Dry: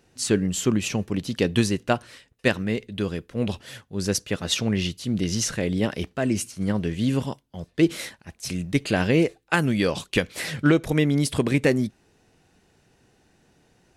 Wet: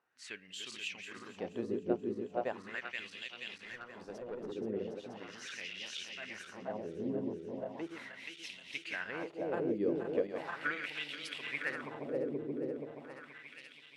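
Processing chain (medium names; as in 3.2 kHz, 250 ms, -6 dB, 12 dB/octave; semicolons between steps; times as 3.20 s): backward echo that repeats 239 ms, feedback 85%, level -5 dB; wah-wah 0.38 Hz 380–3100 Hz, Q 2.7; 3.65–4.52 s: valve stage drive 29 dB, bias 0.35; trim -7 dB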